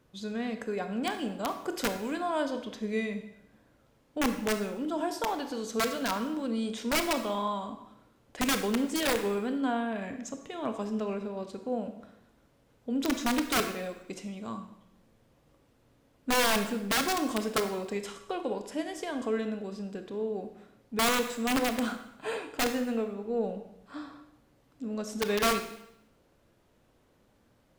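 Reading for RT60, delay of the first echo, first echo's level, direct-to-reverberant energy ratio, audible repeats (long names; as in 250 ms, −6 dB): 0.80 s, no echo audible, no echo audible, 7.5 dB, no echo audible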